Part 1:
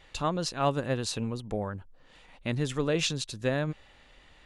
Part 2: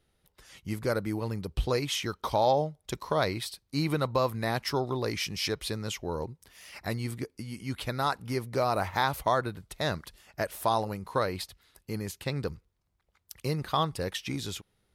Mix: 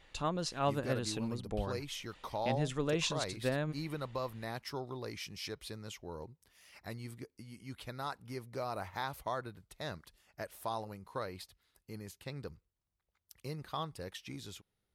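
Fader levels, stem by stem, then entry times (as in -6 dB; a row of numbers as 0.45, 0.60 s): -5.5, -11.5 dB; 0.00, 0.00 s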